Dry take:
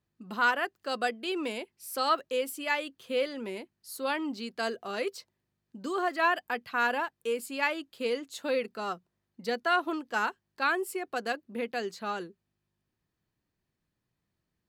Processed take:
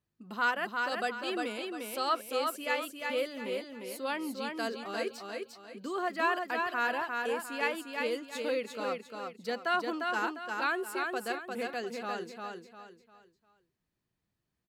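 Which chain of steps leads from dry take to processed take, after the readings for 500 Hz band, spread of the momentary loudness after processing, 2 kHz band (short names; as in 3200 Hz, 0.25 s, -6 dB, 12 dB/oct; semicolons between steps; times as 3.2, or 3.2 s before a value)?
-2.0 dB, 11 LU, -2.0 dB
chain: feedback echo 0.351 s, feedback 34%, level -4 dB; gain -3.5 dB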